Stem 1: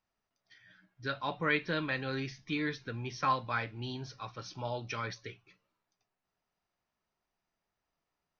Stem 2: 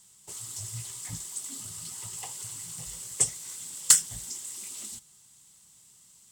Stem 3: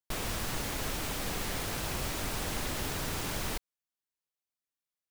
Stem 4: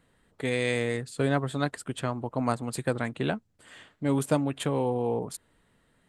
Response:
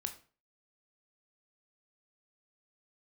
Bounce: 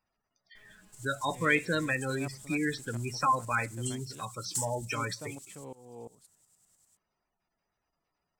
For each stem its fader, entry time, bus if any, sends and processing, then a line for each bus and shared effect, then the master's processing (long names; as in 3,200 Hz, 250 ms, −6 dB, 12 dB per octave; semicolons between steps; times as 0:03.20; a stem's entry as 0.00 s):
+2.5 dB, 0.00 s, send −14.5 dB, gate on every frequency bin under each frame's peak −15 dB strong; high-shelf EQ 5,900 Hz +11 dB
−19.0 dB, 0.65 s, no send, bass and treble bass +12 dB, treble +12 dB; shaped tremolo saw up 10 Hz, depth 70%
−18.5 dB, 0.45 s, no send, high-shelf EQ 5,400 Hz −7 dB; tuned comb filter 210 Hz, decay 0.2 s, harmonics all, mix 90%
−15.5 dB, 0.90 s, no send, shaped tremolo saw up 2.9 Hz, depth 95%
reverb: on, RT60 0.40 s, pre-delay 16 ms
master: no processing